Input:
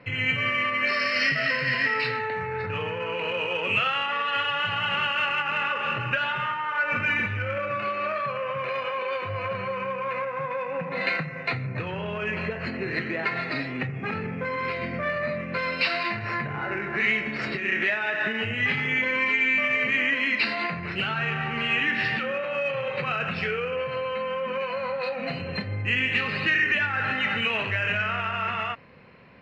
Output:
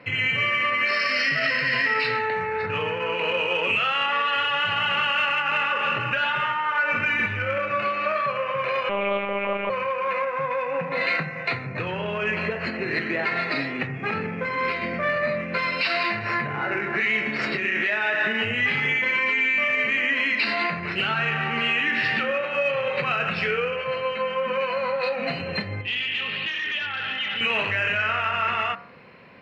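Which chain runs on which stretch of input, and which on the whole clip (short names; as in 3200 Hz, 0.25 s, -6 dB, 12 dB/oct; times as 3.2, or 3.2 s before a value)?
8.89–9.7 comb 3.5 ms, depth 80% + monotone LPC vocoder at 8 kHz 200 Hz
25.81–27.41 overloaded stage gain 23.5 dB + ladder low-pass 3400 Hz, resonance 80% + fast leveller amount 50%
whole clip: low shelf 110 Hz -11.5 dB; de-hum 64.47 Hz, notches 29; limiter -18.5 dBFS; gain +4.5 dB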